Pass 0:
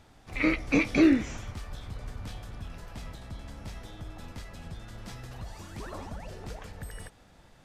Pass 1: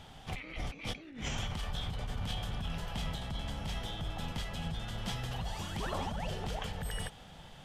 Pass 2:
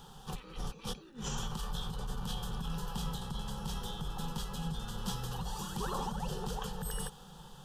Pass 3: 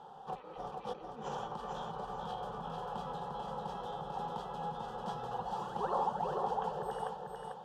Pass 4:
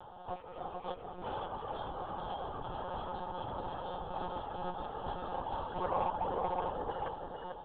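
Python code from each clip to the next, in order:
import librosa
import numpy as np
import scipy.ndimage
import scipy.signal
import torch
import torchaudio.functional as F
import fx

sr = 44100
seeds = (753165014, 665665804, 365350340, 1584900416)

y1 = fx.graphic_eq_31(x, sr, hz=(160, 315, 800, 3150), db=(7, -6, 5, 12))
y1 = fx.over_compress(y1, sr, threshold_db=-38.0, ratio=-1.0)
y2 = fx.high_shelf(y1, sr, hz=12000.0, db=9.0)
y2 = fx.fixed_phaser(y2, sr, hz=430.0, stages=8)
y2 = F.gain(torch.from_numpy(y2), 3.0).numpy()
y3 = fx.bandpass_q(y2, sr, hz=670.0, q=2.6)
y3 = fx.echo_feedback(y3, sr, ms=445, feedback_pct=32, wet_db=-4)
y3 = F.gain(torch.from_numpy(y3), 10.5).numpy()
y4 = 10.0 ** (-23.5 / 20.0) * np.tanh(y3 / 10.0 ** (-23.5 / 20.0))
y4 = fx.lpc_monotone(y4, sr, seeds[0], pitch_hz=180.0, order=16)
y4 = F.gain(torch.from_numpy(y4), 1.0).numpy()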